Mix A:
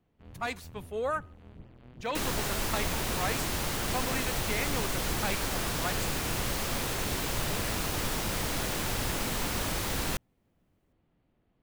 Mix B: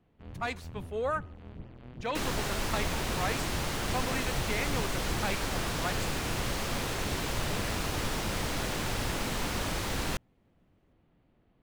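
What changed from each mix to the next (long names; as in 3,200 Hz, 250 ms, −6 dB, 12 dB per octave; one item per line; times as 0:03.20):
first sound +4.5 dB
master: add high-shelf EQ 10,000 Hz −10.5 dB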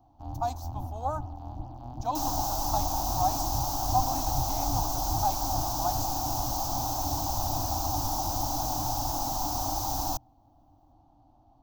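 first sound +7.5 dB
master: add drawn EQ curve 120 Hz 0 dB, 190 Hz −15 dB, 300 Hz +4 dB, 430 Hz −22 dB, 780 Hz +14 dB, 2,000 Hz −27 dB, 6,000 Hz +9 dB, 9,300 Hz −7 dB, 15,000 Hz +15 dB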